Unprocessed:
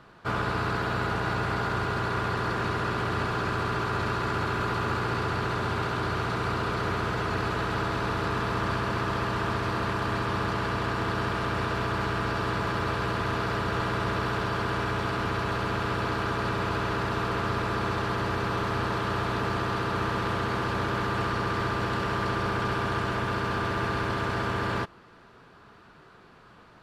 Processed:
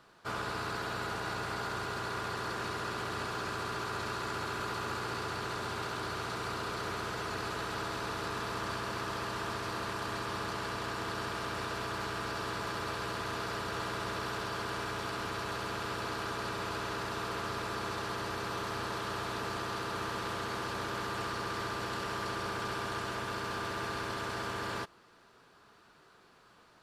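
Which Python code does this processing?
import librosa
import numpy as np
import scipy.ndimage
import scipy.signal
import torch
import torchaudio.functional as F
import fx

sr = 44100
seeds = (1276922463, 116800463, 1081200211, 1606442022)

y = fx.bass_treble(x, sr, bass_db=-6, treble_db=10)
y = np.clip(y, -10.0 ** (-19.0 / 20.0), 10.0 ** (-19.0 / 20.0))
y = F.gain(torch.from_numpy(y), -7.5).numpy()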